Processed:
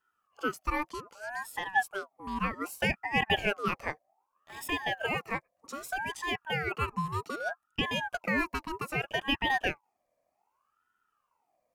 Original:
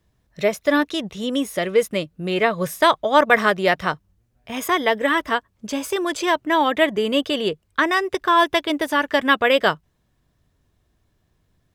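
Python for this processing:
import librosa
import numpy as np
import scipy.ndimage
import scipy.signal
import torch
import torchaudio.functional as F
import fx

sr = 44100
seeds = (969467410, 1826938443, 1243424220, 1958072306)

y = fx.fixed_phaser(x, sr, hz=790.0, stages=6)
y = fx.ring_lfo(y, sr, carrier_hz=1000.0, swing_pct=40, hz=0.64)
y = F.gain(torch.from_numpy(y), -7.0).numpy()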